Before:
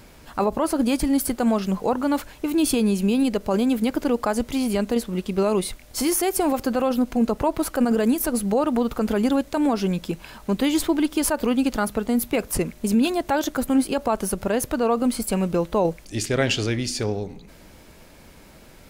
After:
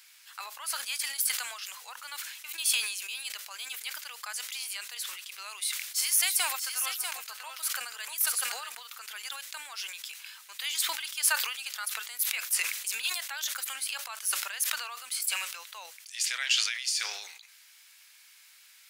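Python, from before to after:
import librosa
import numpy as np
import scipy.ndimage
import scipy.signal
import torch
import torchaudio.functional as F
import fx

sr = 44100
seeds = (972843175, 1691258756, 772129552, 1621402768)

y = fx.echo_single(x, sr, ms=643, db=-6.5, at=(6.26, 8.72), fade=0.02)
y = scipy.signal.sosfilt(scipy.signal.bessel(4, 2400.0, 'highpass', norm='mag', fs=sr, output='sos'), y)
y = fx.sustainer(y, sr, db_per_s=54.0)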